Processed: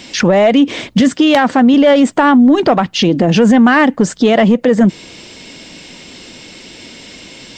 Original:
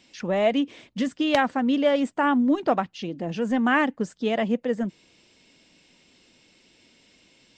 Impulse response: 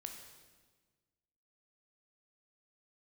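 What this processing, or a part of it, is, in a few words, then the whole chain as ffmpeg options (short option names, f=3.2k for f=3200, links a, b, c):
mastering chain: -filter_complex "[0:a]equalizer=f=2.6k:t=o:w=0.2:g=-2.5,acompressor=threshold=-25dB:ratio=2.5,asoftclip=type=tanh:threshold=-17.5dB,alimiter=level_in=26dB:limit=-1dB:release=50:level=0:latency=1,asettb=1/sr,asplit=3[a][b][c];[a]atrim=end=1.004[d];[b]atrim=start=1:end=1.74,asetpts=PTS-STARTPTS,afade=t=in:d=0.004:c=qsin,afade=t=out:st=0.736:d=0.004:c=qsin,highpass=91[e];[c]atrim=start=1.736[f];[d][e]acrossfade=d=0.004:c1=hsin:c2=qsin[g];[g][f]acrossfade=d=0.004:c1=qsin:c2=hsin,volume=-2dB"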